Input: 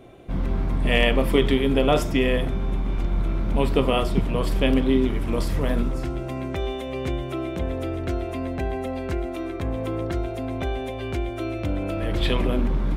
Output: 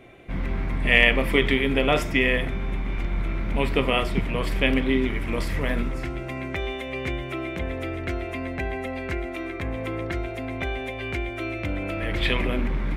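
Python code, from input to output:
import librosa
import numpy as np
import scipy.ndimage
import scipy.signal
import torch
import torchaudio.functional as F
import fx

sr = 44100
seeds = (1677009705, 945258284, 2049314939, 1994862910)

y = fx.peak_eq(x, sr, hz=2100.0, db=12.5, octaves=0.86)
y = y * 10.0 ** (-3.0 / 20.0)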